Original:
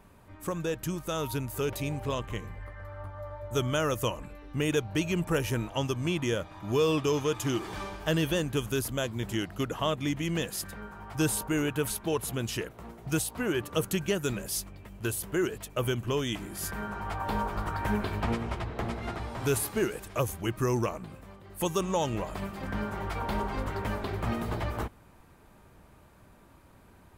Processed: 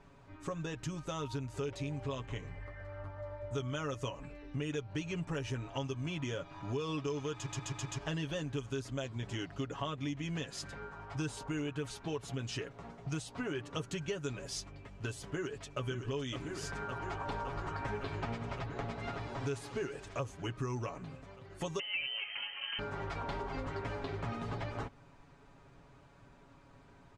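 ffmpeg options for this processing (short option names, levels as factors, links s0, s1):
-filter_complex "[0:a]asplit=2[s0][s1];[s1]afade=t=in:st=15.21:d=0.01,afade=t=out:st=15.85:d=0.01,aecho=0:1:560|1120|1680|2240|2800|3360|3920|4480|5040|5600|6160|6720:0.375837|0.30067|0.240536|0.192429|0.153943|0.123154|0.0985235|0.0788188|0.0630551|0.050444|0.0403552|0.0322842[s2];[s0][s2]amix=inputs=2:normalize=0,asettb=1/sr,asplit=3[s3][s4][s5];[s3]atrim=end=21.794[s6];[s4]atrim=start=21.79:end=22.79,asetpts=PTS-STARTPTS,afade=t=in:d=0.004:c=qsin,afade=t=out:st=0.996:d=0.004:c=qsin,lowpass=f=2700:t=q:w=0.5098,lowpass=f=2700:t=q:w=0.6013,lowpass=f=2700:t=q:w=0.9,lowpass=f=2700:t=q:w=2.563,afreqshift=-3200[s7];[s5]atrim=start=22.786[s8];[s6][s7]acrossfade=d=0.004:c1=hsin:c2=qsin[s9];[s9][s8]acrossfade=d=0.004:c1=qsin:c2=hsin,asplit=6[s10][s11][s12][s13][s14][s15];[s10]atrim=end=7.462[s16];[s11]atrim=start=7.328:end=7.462[s17];[s12]atrim=start=7.328:end=7.462[s18];[s13]atrim=start=7.328:end=7.462[s19];[s14]atrim=start=7.328:end=7.462[s20];[s15]atrim=start=7.978[s21];[s16][s17]acrossfade=d=0.004:c1=hsin:c2=hsin[s22];[s22][s18]acrossfade=d=0.004:c1=hsin:c2=hsin[s23];[s23][s19]acrossfade=d=0.004:c1=hsin:c2=hsin[s24];[s24][s20]acrossfade=d=0.004:c1=hsin:c2=hsin[s25];[s25][s21]acrossfade=d=0.004:c1=hsin:c2=hsin,lowpass=f=7000:w=0.5412,lowpass=f=7000:w=1.3066,aecho=1:1:7.2:0.68,acompressor=threshold=0.0251:ratio=3,volume=0.631"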